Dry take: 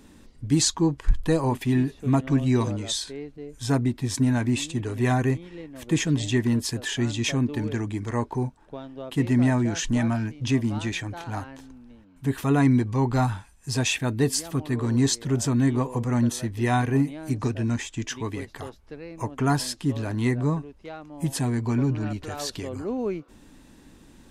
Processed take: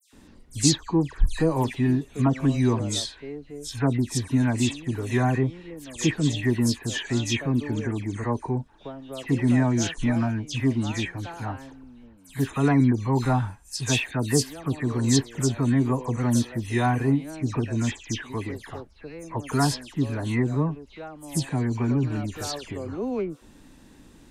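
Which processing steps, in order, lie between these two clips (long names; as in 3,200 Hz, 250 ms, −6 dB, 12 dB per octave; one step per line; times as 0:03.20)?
all-pass dispersion lows, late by 131 ms, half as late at 2,900 Hz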